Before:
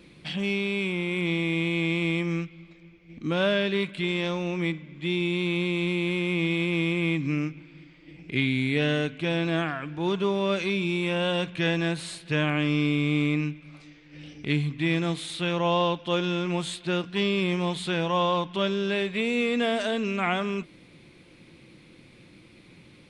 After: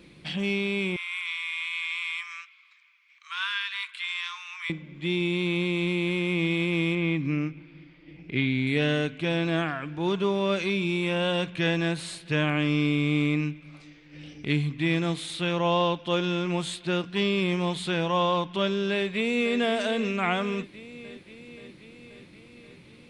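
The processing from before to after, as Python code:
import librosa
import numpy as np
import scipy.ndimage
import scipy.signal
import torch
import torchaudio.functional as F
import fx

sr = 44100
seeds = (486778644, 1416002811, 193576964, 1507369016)

y = fx.steep_highpass(x, sr, hz=980.0, slope=96, at=(0.96, 4.7))
y = fx.air_absorb(y, sr, metres=120.0, at=(6.95, 8.67))
y = fx.echo_throw(y, sr, start_s=18.92, length_s=0.66, ms=530, feedback_pct=70, wet_db=-12.0)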